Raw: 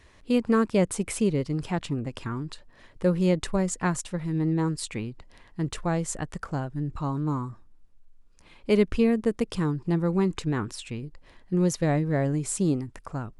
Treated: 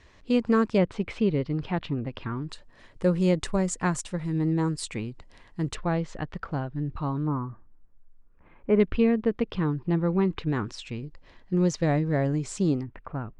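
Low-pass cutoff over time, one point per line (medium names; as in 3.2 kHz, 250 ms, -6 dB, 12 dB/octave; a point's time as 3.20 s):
low-pass 24 dB/octave
7.1 kHz
from 0.78 s 4 kHz
from 2.49 s 9.6 kHz
from 5.75 s 4.2 kHz
from 7.27 s 1.9 kHz
from 8.80 s 3.7 kHz
from 10.49 s 6.5 kHz
from 12.83 s 2.7 kHz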